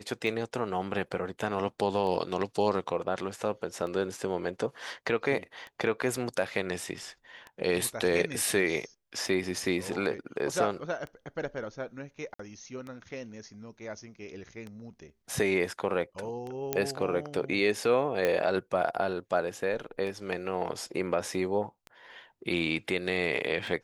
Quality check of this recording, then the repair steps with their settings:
tick 33 1/3 rpm
12.34–12.39 gap 54 ms
16.73 pop -12 dBFS
18.25 pop -14 dBFS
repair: de-click; interpolate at 12.34, 54 ms

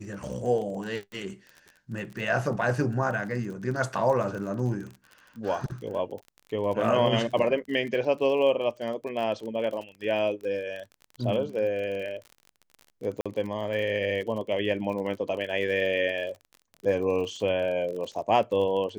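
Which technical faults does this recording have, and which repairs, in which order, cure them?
crackle 38/s -35 dBFS
13.21–13.26 gap 46 ms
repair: de-click; interpolate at 13.21, 46 ms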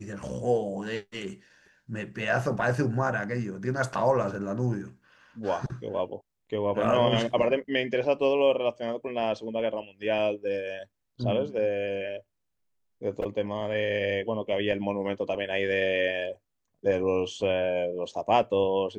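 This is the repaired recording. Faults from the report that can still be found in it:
none

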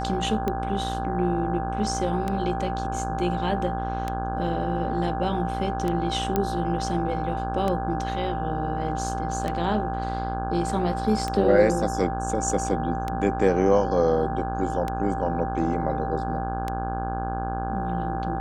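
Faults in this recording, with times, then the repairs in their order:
buzz 60 Hz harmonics 28 -31 dBFS
tick 33 1/3 rpm -14 dBFS
tone 780 Hz -30 dBFS
6.36 pop -10 dBFS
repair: de-click; de-hum 60 Hz, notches 28; notch 780 Hz, Q 30

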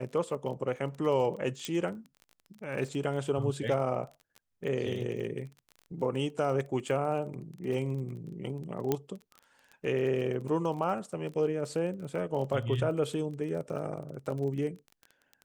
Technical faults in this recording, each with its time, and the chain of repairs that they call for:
crackle 23/s -38 dBFS
1.65 pop -20 dBFS
8.92 pop -14 dBFS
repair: de-click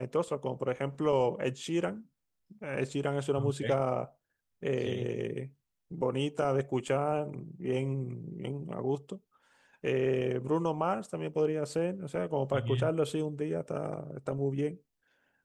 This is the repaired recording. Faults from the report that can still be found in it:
8.92 pop

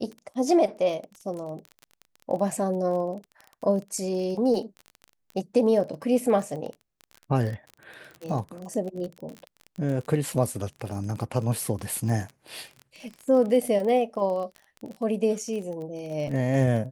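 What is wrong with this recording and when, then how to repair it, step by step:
crackle 27/s -32 dBFS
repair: de-click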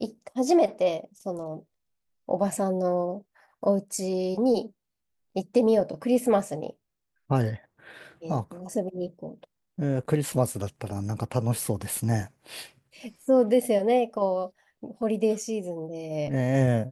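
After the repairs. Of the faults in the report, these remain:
none

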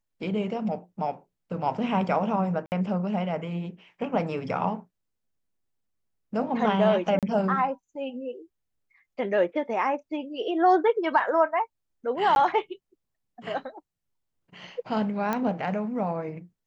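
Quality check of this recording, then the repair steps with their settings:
2.66–2.72 gap 59 ms
7.19–7.23 gap 37 ms
12.35–12.36 gap 11 ms
15.33 pop -14 dBFS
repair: de-click; interpolate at 2.66, 59 ms; interpolate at 7.19, 37 ms; interpolate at 12.35, 11 ms

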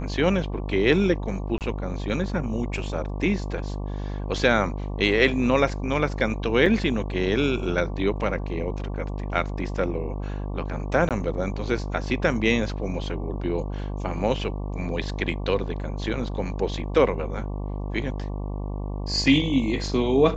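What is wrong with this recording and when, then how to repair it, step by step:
buzz 50 Hz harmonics 23 -30 dBFS
1.58–1.61 gap 28 ms
6.66 gap 2.8 ms
11.09–11.11 gap 17 ms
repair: de-hum 50 Hz, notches 23; interpolate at 1.58, 28 ms; interpolate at 6.66, 2.8 ms; interpolate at 11.09, 17 ms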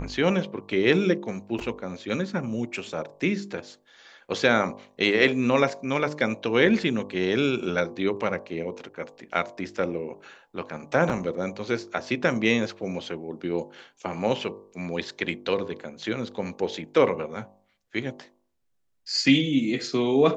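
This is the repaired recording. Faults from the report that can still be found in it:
none

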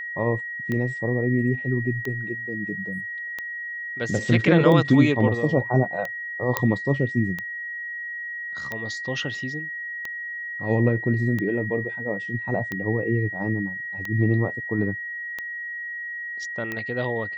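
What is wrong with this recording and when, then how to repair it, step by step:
tick 45 rpm -16 dBFS
tone 1900 Hz -30 dBFS
6.57 pop -6 dBFS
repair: de-click; notch 1900 Hz, Q 30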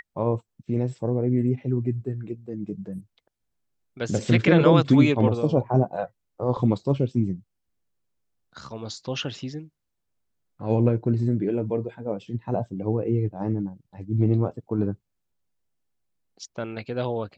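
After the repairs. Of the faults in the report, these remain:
none

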